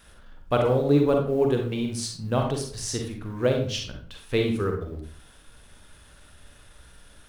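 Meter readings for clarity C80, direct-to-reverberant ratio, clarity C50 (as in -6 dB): 9.5 dB, 2.0 dB, 4.5 dB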